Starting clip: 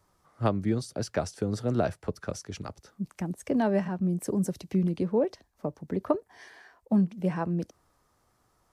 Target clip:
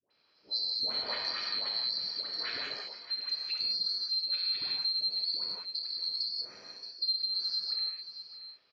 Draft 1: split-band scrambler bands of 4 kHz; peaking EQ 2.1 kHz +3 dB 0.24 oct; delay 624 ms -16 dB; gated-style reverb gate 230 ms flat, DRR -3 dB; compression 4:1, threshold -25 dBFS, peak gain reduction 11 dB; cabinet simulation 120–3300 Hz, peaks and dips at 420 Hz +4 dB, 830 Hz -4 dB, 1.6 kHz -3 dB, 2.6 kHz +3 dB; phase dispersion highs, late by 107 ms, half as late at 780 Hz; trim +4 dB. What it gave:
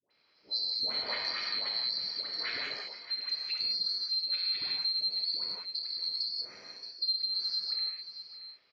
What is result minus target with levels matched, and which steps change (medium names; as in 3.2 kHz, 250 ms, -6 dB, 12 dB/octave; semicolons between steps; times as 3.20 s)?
2 kHz band +2.5 dB
change: peaking EQ 2.1 kHz -4.5 dB 0.24 oct